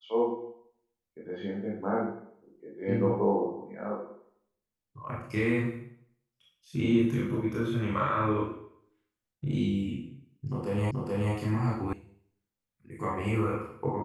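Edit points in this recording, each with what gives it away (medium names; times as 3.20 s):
10.91 s: repeat of the last 0.43 s
11.93 s: sound stops dead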